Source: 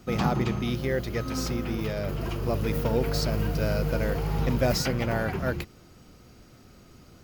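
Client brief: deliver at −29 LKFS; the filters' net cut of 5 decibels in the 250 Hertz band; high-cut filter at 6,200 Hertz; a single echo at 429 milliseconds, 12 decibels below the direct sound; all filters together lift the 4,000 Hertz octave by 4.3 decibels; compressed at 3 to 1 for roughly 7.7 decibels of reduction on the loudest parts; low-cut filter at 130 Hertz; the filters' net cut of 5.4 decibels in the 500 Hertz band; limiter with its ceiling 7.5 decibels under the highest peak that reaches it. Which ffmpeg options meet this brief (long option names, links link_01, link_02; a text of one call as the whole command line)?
ffmpeg -i in.wav -af "highpass=130,lowpass=6200,equalizer=frequency=250:width_type=o:gain=-4.5,equalizer=frequency=500:width_type=o:gain=-5.5,equalizer=frequency=4000:width_type=o:gain=7,acompressor=threshold=-33dB:ratio=3,alimiter=level_in=2.5dB:limit=-24dB:level=0:latency=1,volume=-2.5dB,aecho=1:1:429:0.251,volume=8.5dB" out.wav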